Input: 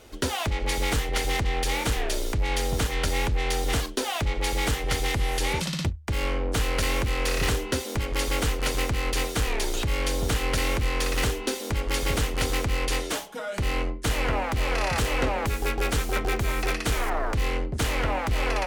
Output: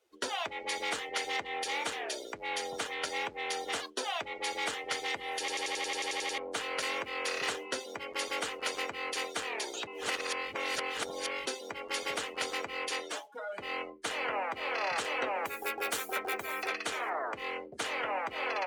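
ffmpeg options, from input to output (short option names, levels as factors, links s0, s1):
-filter_complex "[0:a]asettb=1/sr,asplit=3[s0][s1][s2];[s0]atrim=end=13.084[s3];[s1]atrim=start=13.08:end=13.59,asetpts=PTS-STARTPTS,afade=t=in:d=0.004:c=qsin,afade=t=out:st=0.506:d=0.004:c=qsin,aeval=exprs='clip(val(0),-1,0.0282)':c=same[s4];[s2]atrim=start=13.586[s5];[s3][s4]acrossfade=d=0.004:c1=hsin:c2=qsin[s6];[s6][s5]acrossfade=d=0.004:c1=qsin:c2=hsin,asettb=1/sr,asplit=3[s7][s8][s9];[s7]atrim=end=15.354[s10];[s8]atrim=start=15.35:end=16.68,asetpts=PTS-STARTPTS,afade=t=in:d=0.004:c=qsin,afade=t=out:st=1.326:d=0.004:c=qsin,highshelf=f=11000:g=11.5[s11];[s9]atrim=start=16.676[s12];[s10][s11]acrossfade=d=0.004:c1=hsin:c2=qsin[s13];[s13][s12]acrossfade=d=0.004:c1=qsin:c2=hsin,asplit=14[s14][s15][s16][s17][s18][s19][s20][s21][s22][s23][s24][s25][s26][s27];[s14]atrim=end=5.482[s28];[s15]atrim=start=5.388:end=5.482[s29];[s16]atrim=start=5.388:end=5.482[s30];[s17]atrim=start=5.388:end=5.482[s31];[s18]atrim=start=5.388:end=5.482[s32];[s19]atrim=start=5.388:end=5.482[s33];[s20]atrim=start=5.388:end=5.482[s34];[s21]atrim=start=5.388:end=5.482[s35];[s22]atrim=start=5.388:end=5.482[s36];[s23]atrim=start=5.388:end=5.482[s37];[s24]atrim=start=5.388:end=5.482[s38];[s25]atrim=start=6.378:end=9.872[s39];[s26]atrim=start=9.868:end=11.462,asetpts=PTS-STARTPTS,areverse[s40];[s27]atrim=start=11.458[s41];[s28][s29]acrossfade=d=0.004:c1=hsin:c2=hsin[s42];[s42][s30]acrossfade=d=0.004:c1=hsin:c2=hsin[s43];[s43][s31]acrossfade=d=0.004:c1=hsin:c2=hsin[s44];[s44][s32]acrossfade=d=0.004:c1=hsin:c2=hsin[s45];[s45][s33]acrossfade=d=0.004:c1=hsin:c2=hsin[s46];[s46][s34]acrossfade=d=0.004:c1=hsin:c2=hsin[s47];[s47][s35]acrossfade=d=0.004:c1=hsin:c2=hsin[s48];[s48][s36]acrossfade=d=0.004:c1=hsin:c2=hsin[s49];[s49][s37]acrossfade=d=0.004:c1=hsin:c2=hsin[s50];[s50][s38]acrossfade=d=0.004:c1=hsin:c2=hsin[s51];[s51][s39]acrossfade=d=0.004:c1=hsin:c2=hsin[s52];[s52][s40]acrossfade=d=0.004:c1=hsin:c2=hsin[s53];[s53][s41]acrossfade=d=0.004:c1=hsin:c2=hsin,afftdn=nr=20:nf=-37,highpass=510,volume=0.631"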